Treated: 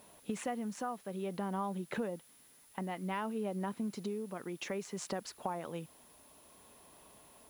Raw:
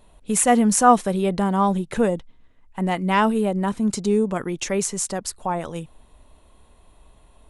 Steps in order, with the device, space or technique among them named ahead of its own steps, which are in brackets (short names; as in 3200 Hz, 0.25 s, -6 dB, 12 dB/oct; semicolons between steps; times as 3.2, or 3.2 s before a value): medium wave at night (BPF 170–3800 Hz; compressor 6:1, threshold -33 dBFS, peak gain reduction 22.5 dB; tremolo 0.57 Hz, depth 33%; whine 10000 Hz -61 dBFS; white noise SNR 25 dB); gain -1.5 dB